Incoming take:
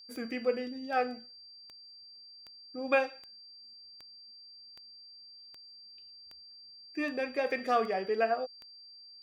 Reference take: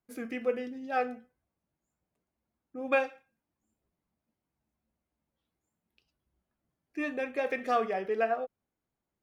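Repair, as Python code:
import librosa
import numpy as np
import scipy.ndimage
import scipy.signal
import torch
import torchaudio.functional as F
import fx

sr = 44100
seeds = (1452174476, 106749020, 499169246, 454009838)

y = fx.fix_declick_ar(x, sr, threshold=10.0)
y = fx.notch(y, sr, hz=4700.0, q=30.0)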